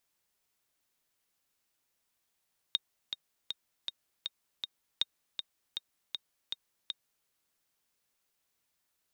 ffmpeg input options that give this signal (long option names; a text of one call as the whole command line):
ffmpeg -f lavfi -i "aevalsrc='pow(10,(-14.5-7.5*gte(mod(t,6*60/159),60/159))/20)*sin(2*PI*3710*mod(t,60/159))*exp(-6.91*mod(t,60/159)/0.03)':duration=4.52:sample_rate=44100" out.wav